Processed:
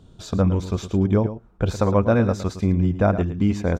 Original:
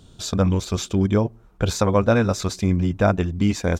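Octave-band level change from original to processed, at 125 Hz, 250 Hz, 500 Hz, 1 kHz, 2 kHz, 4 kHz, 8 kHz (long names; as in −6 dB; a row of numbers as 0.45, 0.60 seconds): +0.5, +0.5, −0.5, −1.5, −4.0, −8.5, −10.0 decibels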